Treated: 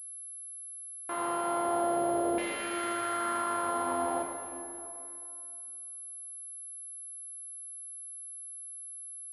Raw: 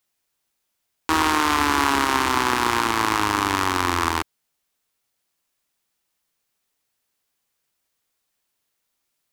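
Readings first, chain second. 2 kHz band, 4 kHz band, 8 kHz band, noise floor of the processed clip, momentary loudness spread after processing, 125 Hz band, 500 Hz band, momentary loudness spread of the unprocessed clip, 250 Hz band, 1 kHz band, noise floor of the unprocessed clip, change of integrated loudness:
-16.5 dB, -19.5 dB, -3.5 dB, -44 dBFS, 11 LU, -20.0 dB, -2.0 dB, 5 LU, -9.5 dB, -11.0 dB, -76 dBFS, -14.0 dB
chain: sample sorter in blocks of 128 samples; de-hum 79.54 Hz, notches 3; sample leveller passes 1; fuzz box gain 30 dB, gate -39 dBFS; LFO band-pass saw down 0.42 Hz 510–2300 Hz; plate-style reverb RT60 2.7 s, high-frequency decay 0.8×, DRR 0.5 dB; pulse-width modulation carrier 11000 Hz; gain -8.5 dB

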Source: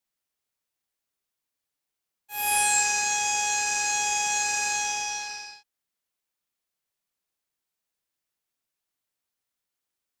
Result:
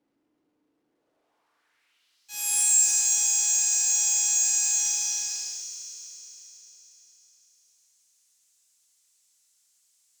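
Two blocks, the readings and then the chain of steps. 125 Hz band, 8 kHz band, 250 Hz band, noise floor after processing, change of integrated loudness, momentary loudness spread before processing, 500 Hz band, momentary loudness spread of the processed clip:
n/a, +6.0 dB, under -10 dB, -75 dBFS, +2.5 dB, 13 LU, under -10 dB, 18 LU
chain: band-pass sweep 300 Hz -> 7200 Hz, 0.85–2.43; FDN reverb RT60 3.2 s, high-frequency decay 0.95×, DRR 2.5 dB; power-law curve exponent 0.7; gain +1.5 dB

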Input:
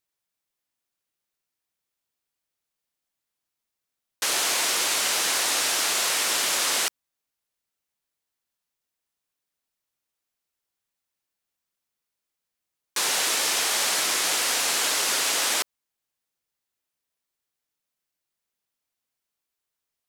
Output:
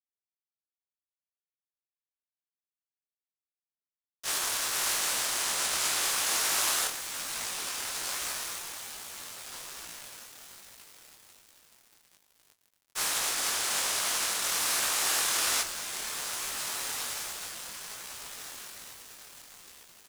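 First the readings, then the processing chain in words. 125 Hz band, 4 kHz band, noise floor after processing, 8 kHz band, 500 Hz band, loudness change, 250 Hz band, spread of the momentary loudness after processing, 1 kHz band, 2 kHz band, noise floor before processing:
n/a, -5.5 dB, under -85 dBFS, -3.5 dB, -7.0 dB, -7.0 dB, -6.0 dB, 18 LU, -4.0 dB, -5.5 dB, -85 dBFS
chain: per-bin compression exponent 0.2; limiter -13.5 dBFS, peak gain reduction 8 dB; spectral noise reduction 24 dB; hum 60 Hz, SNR 25 dB; high shelf 5600 Hz +8 dB; doubler 21 ms -10 dB; diffused feedback echo 1.708 s, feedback 65%, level -4 dB; vibrato 0.49 Hz 81 cents; dynamic EQ 1200 Hz, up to +5 dB, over -38 dBFS, Q 0.98; crossover distortion -23.5 dBFS; detuned doubles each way 42 cents; gain -4 dB

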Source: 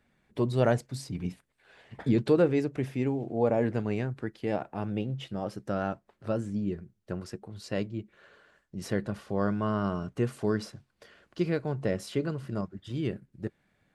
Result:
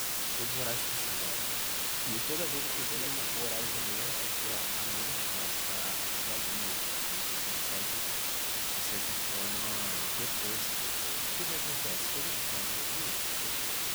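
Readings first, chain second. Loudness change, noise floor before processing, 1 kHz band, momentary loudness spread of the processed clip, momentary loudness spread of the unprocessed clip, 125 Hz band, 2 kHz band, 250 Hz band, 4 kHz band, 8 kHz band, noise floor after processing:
+1.0 dB, -74 dBFS, -1.5 dB, 0 LU, 14 LU, -15.0 dB, +6.0 dB, -14.5 dB, +15.5 dB, +22.0 dB, -34 dBFS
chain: pre-emphasis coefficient 0.9; requantised 6-bit, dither triangular; delay with a stepping band-pass 0.206 s, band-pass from 3200 Hz, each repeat -1.4 oct, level -1.5 dB; gain +2.5 dB

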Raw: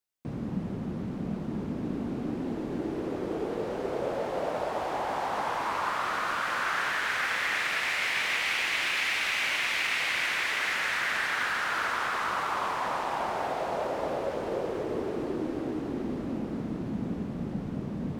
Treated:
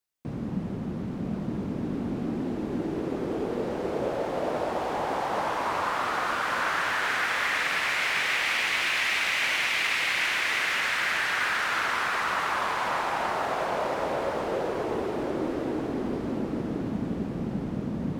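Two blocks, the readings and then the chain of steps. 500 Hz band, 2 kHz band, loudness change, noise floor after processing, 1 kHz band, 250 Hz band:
+2.5 dB, +2.5 dB, +2.5 dB, -33 dBFS, +2.5 dB, +2.5 dB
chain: diffused feedback echo 1.03 s, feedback 41%, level -7 dB; gain +1.5 dB

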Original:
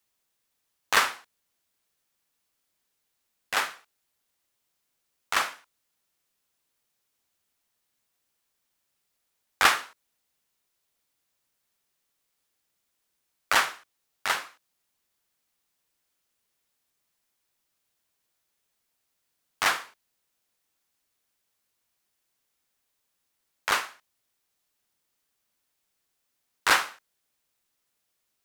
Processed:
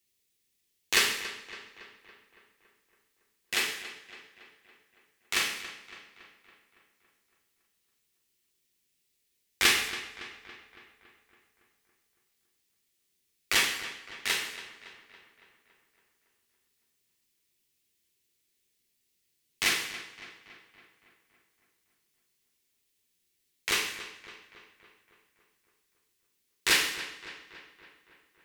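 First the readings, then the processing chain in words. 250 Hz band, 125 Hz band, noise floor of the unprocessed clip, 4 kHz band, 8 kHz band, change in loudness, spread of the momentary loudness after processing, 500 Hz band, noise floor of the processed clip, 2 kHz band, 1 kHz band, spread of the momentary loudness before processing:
+2.5 dB, +2.5 dB, -78 dBFS, +2.5 dB, +2.0 dB, -2.5 dB, 21 LU, -2.5 dB, -76 dBFS, -2.0 dB, -10.5 dB, 12 LU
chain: band shelf 950 Hz -13 dB; on a send: darkening echo 0.28 s, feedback 60%, low-pass 4000 Hz, level -13 dB; on the sum: non-linear reverb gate 0.25 s falling, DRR 2 dB

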